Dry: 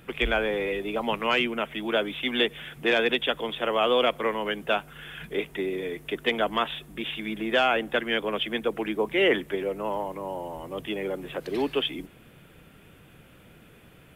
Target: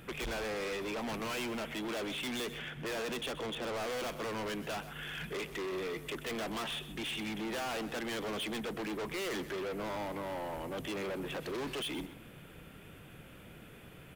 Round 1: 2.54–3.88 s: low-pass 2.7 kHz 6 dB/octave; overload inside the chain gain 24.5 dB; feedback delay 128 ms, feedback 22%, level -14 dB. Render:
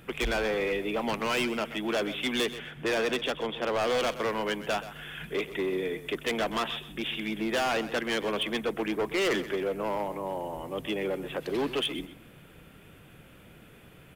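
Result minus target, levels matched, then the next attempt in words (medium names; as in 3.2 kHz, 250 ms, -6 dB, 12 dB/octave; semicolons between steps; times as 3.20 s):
overload inside the chain: distortion -6 dB
2.54–3.88 s: low-pass 2.7 kHz 6 dB/octave; overload inside the chain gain 36 dB; feedback delay 128 ms, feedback 22%, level -14 dB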